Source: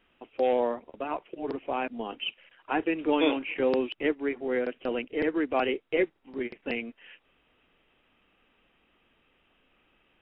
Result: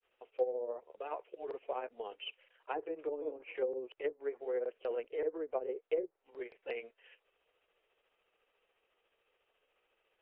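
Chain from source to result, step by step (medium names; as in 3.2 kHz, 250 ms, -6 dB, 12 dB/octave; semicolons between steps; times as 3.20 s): low-pass that closes with the level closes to 350 Hz, closed at -21 dBFS; resonant low shelf 340 Hz -10 dB, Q 3; granulator 128 ms, grains 14 per s, spray 11 ms, pitch spread up and down by 0 st; trim -9 dB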